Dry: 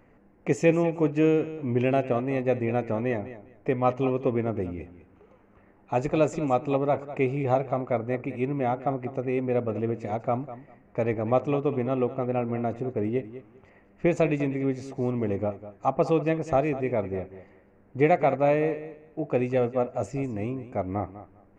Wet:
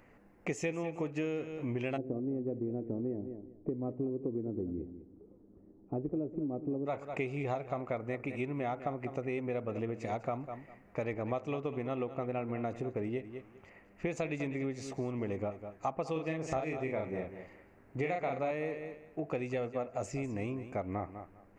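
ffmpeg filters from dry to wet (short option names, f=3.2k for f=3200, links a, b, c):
-filter_complex "[0:a]asplit=3[a][b][c];[a]afade=t=out:st=1.96:d=0.02[d];[b]lowpass=f=330:t=q:w=2.3,afade=t=in:st=1.96:d=0.02,afade=t=out:st=6.85:d=0.02[e];[c]afade=t=in:st=6.85:d=0.02[f];[d][e][f]amix=inputs=3:normalize=0,asettb=1/sr,asplit=3[g][h][i];[g]atrim=end=16.124[j];[h]atrim=start=16.12:end=18.51,asetpts=PTS-STARTPTS,afade=t=in:d=0.004:c=qsin,afade=t=out:st=2.386:d=0.004:c=qsin,asplit=2[k][l];[l]adelay=38,volume=-3dB[m];[k][m]amix=inputs=2:normalize=0,atrim=end_sample=105399[n];[i]atrim=start=18.506[o];[j][n]acrossfade=d=0.004:c1=hsin:c2=qsin[p];[p][o]acrossfade=d=0.004:c1=qsin:c2=hsin,acompressor=threshold=-29dB:ratio=6,tiltshelf=f=1.4k:g=-4"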